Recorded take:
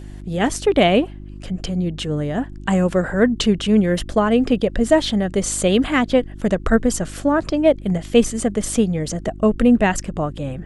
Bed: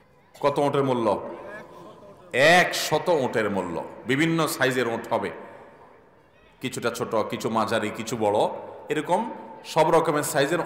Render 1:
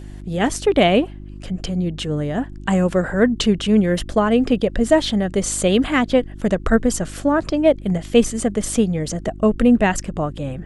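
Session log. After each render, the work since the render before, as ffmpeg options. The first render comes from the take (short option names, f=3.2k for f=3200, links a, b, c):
-af anull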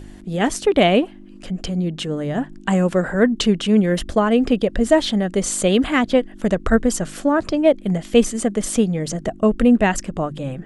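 -af "bandreject=f=50:t=h:w=4,bandreject=f=100:t=h:w=4,bandreject=f=150:t=h:w=4"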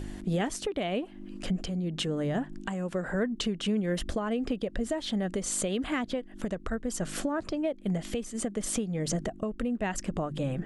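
-af "acompressor=threshold=-25dB:ratio=8,alimiter=limit=-20dB:level=0:latency=1:release=444"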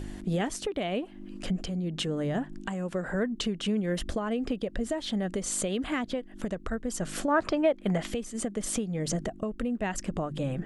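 -filter_complex "[0:a]asettb=1/sr,asplit=3[a][b][c];[a]atrim=end=7.284[d];[b]atrim=start=7.28:end=8.07,asetpts=PTS-STARTPTS,afade=t=in:d=0.004:c=qsin,afade=t=out:st=0.786:d=0.004:c=qsin,equalizer=f=1.3k:w=0.39:g=10.5[e];[c]atrim=start=8.066[f];[d][e]acrossfade=d=0.004:c1=hsin:c2=qsin[g];[g][f]acrossfade=d=0.004:c1=qsin:c2=hsin"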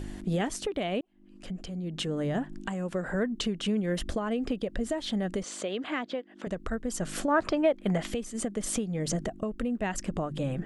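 -filter_complex "[0:a]asettb=1/sr,asplit=3[a][b][c];[a]atrim=end=5.434[d];[b]atrim=start=5.43:end=6.47,asetpts=PTS-STARTPTS,afade=t=in:d=0.004:c=qsin,afade=t=out:st=1.036:d=0.004:c=qsin,highpass=300,lowpass=4.7k[e];[c]atrim=start=6.466[f];[d][e]acrossfade=d=0.004:c1=hsin:c2=qsin[g];[g][f]acrossfade=d=0.004:c1=qsin:c2=hsin,asplit=2[h][i];[h]atrim=end=1.01,asetpts=PTS-STARTPTS,afade=t=out:st=1.006:d=0.004:c=hsin[j];[i]atrim=start=1.01,asetpts=PTS-STARTPTS,afade=t=in:d=1.19[k];[j][k]concat=n=2:v=0:a=1"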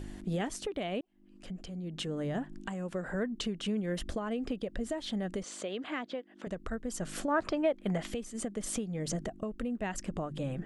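-af "volume=-4.5dB"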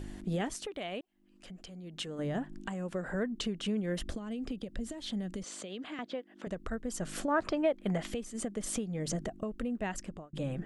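-filter_complex "[0:a]asettb=1/sr,asplit=3[a][b][c];[a]atrim=end=0.534[d];[b]atrim=start=0.53:end=2.19,asetpts=PTS-STARTPTS,afade=t=in:d=0.004:c=qsin,afade=t=out:st=1.656:d=0.004:c=qsin,lowshelf=f=500:g=-8[e];[c]atrim=start=2.186[f];[d][e]acrossfade=d=0.004:c1=hsin:c2=qsin[g];[g][f]acrossfade=d=0.004:c1=qsin:c2=hsin,asettb=1/sr,asplit=3[h][i][j];[h]atrim=end=4.144[k];[i]atrim=start=4.14:end=5.99,asetpts=PTS-STARTPTS,afade=t=in:d=0.004:c=qsin,afade=t=out:st=1.846:d=0.004:c=qsin,acrossover=split=290|3000[l][m][n];[m]acompressor=threshold=-45dB:ratio=6:attack=3.2:release=140:knee=2.83:detection=peak[o];[l][o][n]amix=inputs=3:normalize=0[p];[j]atrim=start=5.986[q];[k][p]acrossfade=d=0.004:c1=hsin:c2=qsin[r];[r][q]acrossfade=d=0.004:c1=qsin:c2=hsin,asplit=2[s][t];[s]atrim=end=10.33,asetpts=PTS-STARTPTS,afade=t=out:st=9.9:d=0.43[u];[t]atrim=start=10.33,asetpts=PTS-STARTPTS,afade=t=in:d=0.004:c=hsin[v];[u][v]concat=n=2:v=0:a=1"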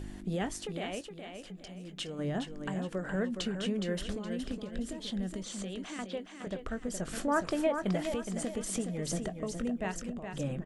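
-filter_complex "[0:a]asplit=2[a][b];[b]adelay=21,volume=-13.5dB[c];[a][c]amix=inputs=2:normalize=0,aecho=1:1:417|834|1251|1668:0.447|0.152|0.0516|0.0176"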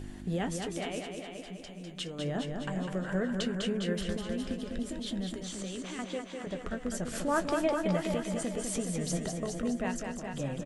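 -filter_complex "[0:a]asplit=2[a][b];[b]adelay=12,volume=-12dB[c];[a][c]amix=inputs=2:normalize=0,aecho=1:1:201|402|603|804|1005:0.531|0.218|0.0892|0.0366|0.015"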